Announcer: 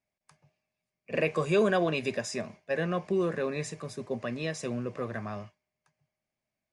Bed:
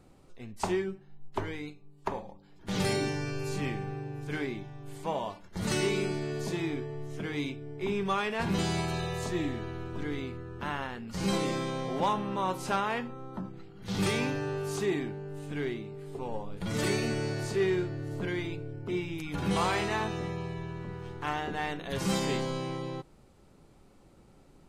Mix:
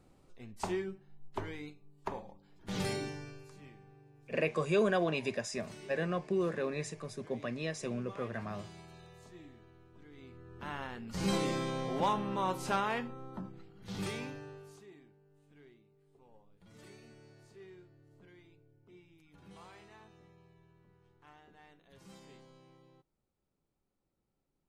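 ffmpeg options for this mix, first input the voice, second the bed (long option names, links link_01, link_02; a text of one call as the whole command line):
ffmpeg -i stem1.wav -i stem2.wav -filter_complex "[0:a]adelay=3200,volume=-4dB[link_01];[1:a]volume=13.5dB,afade=type=out:start_time=2.8:duration=0.69:silence=0.158489,afade=type=in:start_time=10.12:duration=1.07:silence=0.112202,afade=type=out:start_time=12.91:duration=1.93:silence=0.0668344[link_02];[link_01][link_02]amix=inputs=2:normalize=0" out.wav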